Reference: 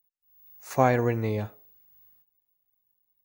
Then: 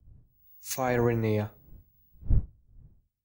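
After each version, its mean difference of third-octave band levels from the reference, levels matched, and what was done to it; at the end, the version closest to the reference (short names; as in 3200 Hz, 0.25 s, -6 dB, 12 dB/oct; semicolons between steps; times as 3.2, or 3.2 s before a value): 3.5 dB: wind noise 130 Hz -39 dBFS; limiter -19 dBFS, peak gain reduction 12 dB; three-band expander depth 100%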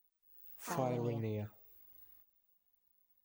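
6.0 dB: compressor 2:1, threshold -50 dBFS, peak gain reduction 18.5 dB; envelope flanger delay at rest 4.3 ms, full sweep at -37 dBFS; echoes that change speed 0.12 s, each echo +5 st, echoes 3, each echo -6 dB; gain +3 dB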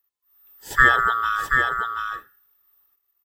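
12.5 dB: band-swap scrambler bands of 1000 Hz; comb 2.3 ms, depth 53%; echo 0.731 s -5 dB; gain +4.5 dB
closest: first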